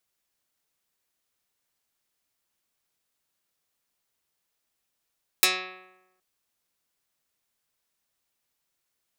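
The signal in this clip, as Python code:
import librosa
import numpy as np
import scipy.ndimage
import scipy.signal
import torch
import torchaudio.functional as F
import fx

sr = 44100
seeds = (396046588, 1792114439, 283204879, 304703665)

y = fx.pluck(sr, length_s=0.77, note=54, decay_s=1.0, pick=0.12, brightness='dark')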